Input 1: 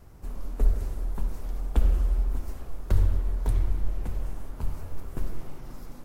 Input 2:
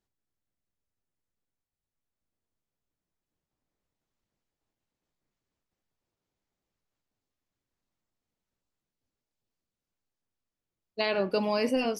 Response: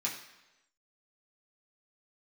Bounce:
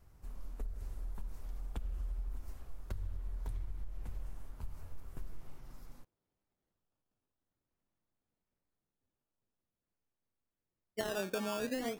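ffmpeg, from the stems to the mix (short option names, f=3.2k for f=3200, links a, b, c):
-filter_complex "[0:a]equalizer=f=340:t=o:w=2.5:g=-5.5,acompressor=threshold=-23dB:ratio=6,volume=-10dB[a];[1:a]lowpass=f=1.6k:p=1,acrusher=samples=15:mix=1:aa=0.000001:lfo=1:lforange=15:lforate=0.46,volume=0dB[b];[a][b]amix=inputs=2:normalize=0,acompressor=threshold=-33dB:ratio=10"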